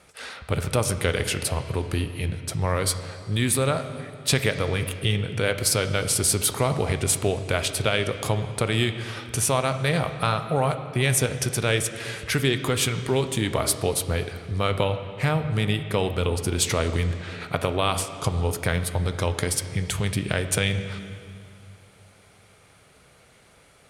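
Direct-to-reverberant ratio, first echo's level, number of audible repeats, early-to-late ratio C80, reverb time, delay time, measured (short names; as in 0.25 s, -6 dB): 8.5 dB, none, none, 11.0 dB, 2.4 s, none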